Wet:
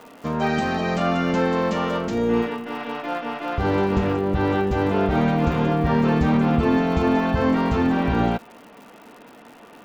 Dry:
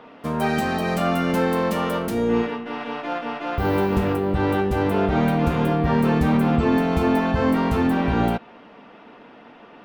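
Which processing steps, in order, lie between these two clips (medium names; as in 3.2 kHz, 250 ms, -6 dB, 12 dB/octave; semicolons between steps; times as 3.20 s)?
resampled via 16 kHz; crackle 150 per s -38 dBFS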